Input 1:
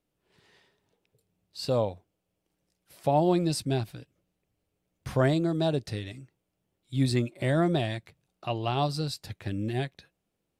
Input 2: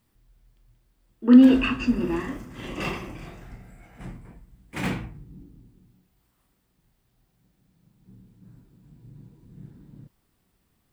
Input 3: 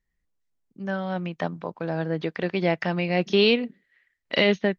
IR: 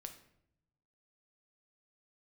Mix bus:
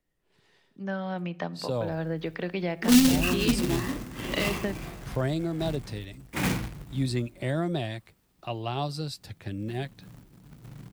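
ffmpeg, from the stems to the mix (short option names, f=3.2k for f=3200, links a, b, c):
-filter_complex "[0:a]volume=-2.5dB[a];[1:a]acrusher=bits=2:mode=log:mix=0:aa=0.000001,adelay=1600,volume=1.5dB[b];[2:a]acompressor=threshold=-24dB:ratio=2,volume=-5.5dB,asplit=2[c][d];[d]volume=-3.5dB[e];[3:a]atrim=start_sample=2205[f];[e][f]afir=irnorm=-1:irlink=0[g];[a][b][c][g]amix=inputs=4:normalize=0,acrossover=split=190|3000[h][i][j];[i]acompressor=threshold=-26dB:ratio=6[k];[h][k][j]amix=inputs=3:normalize=0"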